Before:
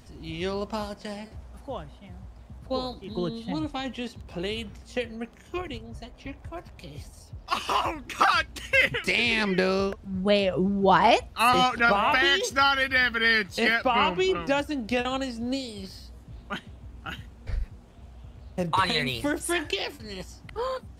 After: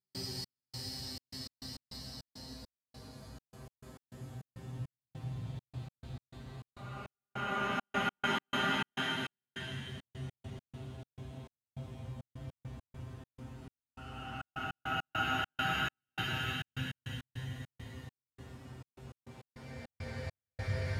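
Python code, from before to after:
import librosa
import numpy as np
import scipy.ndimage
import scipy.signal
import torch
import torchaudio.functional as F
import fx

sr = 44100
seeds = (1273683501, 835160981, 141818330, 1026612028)

y = scipy.signal.sosfilt(scipy.signal.butter(4, 78.0, 'highpass', fs=sr, output='sos'), x)
y = fx.paulstretch(y, sr, seeds[0], factor=13.0, window_s=0.25, from_s=15.9)
y = fx.comb_fb(y, sr, f0_hz=130.0, decay_s=0.18, harmonics='all', damping=0.0, mix_pct=90)
y = fx.step_gate(y, sr, bpm=102, pattern='.xx..xxx.x.x.xx', floor_db=-60.0, edge_ms=4.5)
y = y * 10.0 ** (11.0 / 20.0)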